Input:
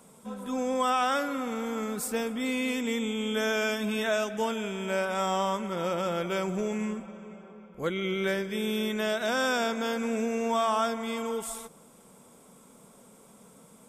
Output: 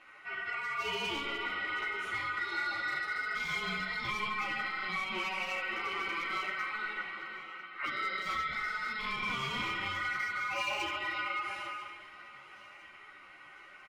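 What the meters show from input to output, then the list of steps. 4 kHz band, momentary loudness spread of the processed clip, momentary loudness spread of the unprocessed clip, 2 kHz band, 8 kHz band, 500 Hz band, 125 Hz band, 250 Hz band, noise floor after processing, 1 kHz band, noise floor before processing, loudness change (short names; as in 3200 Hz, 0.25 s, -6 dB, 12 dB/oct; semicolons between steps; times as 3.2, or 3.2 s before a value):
-2.5 dB, 17 LU, 9 LU, +2.0 dB, -14.0 dB, -17.5 dB, -10.5 dB, -18.0 dB, -54 dBFS, -5.0 dB, -56 dBFS, -5.0 dB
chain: in parallel at -3.5 dB: soft clip -27 dBFS, distortion -12 dB; on the sum: LPF 2400 Hz 12 dB/oct; ring modulator 1700 Hz; Schroeder reverb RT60 1.5 s, combs from 29 ms, DRR 2.5 dB; hard clip -20.5 dBFS, distortion -18 dB; compressor, threshold -31 dBFS, peak gain reduction 8 dB; notch 640 Hz, Q 12; on a send: feedback echo 0.998 s, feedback 51%, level -19 dB; on the sum: ensemble effect; gain +1.5 dB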